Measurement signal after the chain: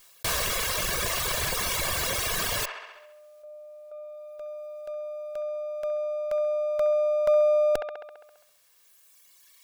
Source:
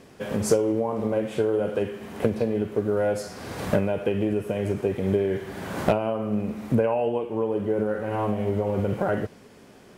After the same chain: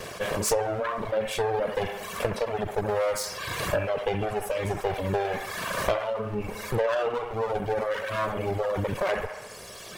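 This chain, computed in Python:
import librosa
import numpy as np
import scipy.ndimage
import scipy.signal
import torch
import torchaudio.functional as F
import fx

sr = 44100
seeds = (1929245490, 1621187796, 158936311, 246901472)

y = fx.lower_of_two(x, sr, delay_ms=1.8)
y = fx.dereverb_blind(y, sr, rt60_s=1.9)
y = fx.low_shelf(y, sr, hz=490.0, db=-8.0)
y = fx.echo_wet_bandpass(y, sr, ms=67, feedback_pct=47, hz=1300.0, wet_db=-11.0)
y = fx.env_flatten(y, sr, amount_pct=50)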